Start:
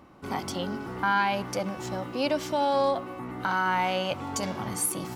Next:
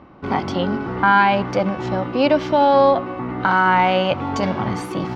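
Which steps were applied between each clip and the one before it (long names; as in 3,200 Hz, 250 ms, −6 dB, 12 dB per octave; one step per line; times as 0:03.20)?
in parallel at −6.5 dB: dead-zone distortion −45 dBFS
on the sum: high-frequency loss of the air 240 metres
level +8.5 dB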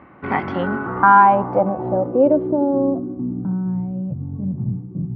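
high-pass filter 64 Hz
low-pass filter sweep 2,000 Hz → 150 Hz, 0:00.38–0:03.87
level −1.5 dB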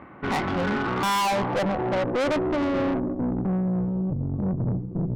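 tube saturation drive 27 dB, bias 0.75
level +5 dB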